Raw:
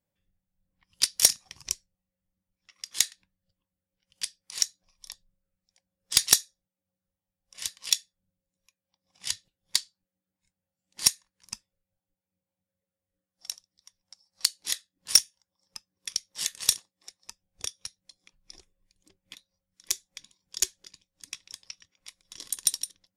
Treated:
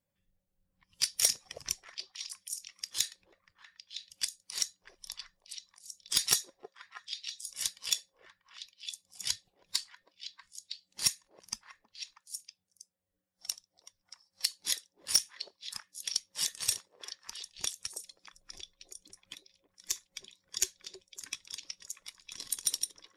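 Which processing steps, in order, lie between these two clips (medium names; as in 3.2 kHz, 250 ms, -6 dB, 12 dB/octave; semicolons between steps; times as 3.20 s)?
coarse spectral quantiser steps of 15 dB; peak limiter -13 dBFS, peak gain reduction 8.5 dB; on a send: repeats whose band climbs or falls 320 ms, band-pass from 480 Hz, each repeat 1.4 oct, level -1 dB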